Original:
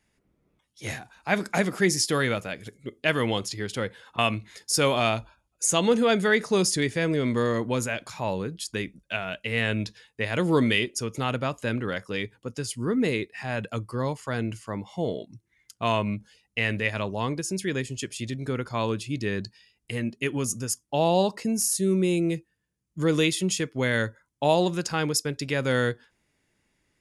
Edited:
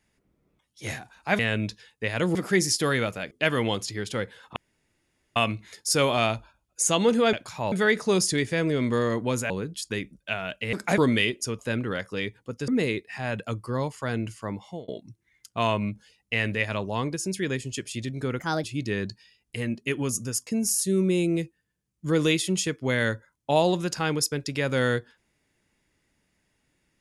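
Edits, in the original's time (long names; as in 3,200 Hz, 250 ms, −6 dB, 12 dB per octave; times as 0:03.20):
0:01.39–0:01.64: swap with 0:09.56–0:10.52
0:02.60–0:02.94: remove
0:04.19: splice in room tone 0.80 s
0:07.94–0:08.33: move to 0:06.16
0:11.13–0:11.56: remove
0:12.65–0:12.93: remove
0:14.84–0:15.13: fade out
0:18.64–0:18.99: play speed 141%
0:20.82–0:21.40: remove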